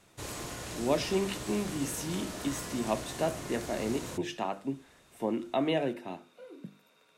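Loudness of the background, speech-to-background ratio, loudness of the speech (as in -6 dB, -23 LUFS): -40.0 LUFS, 6.5 dB, -33.5 LUFS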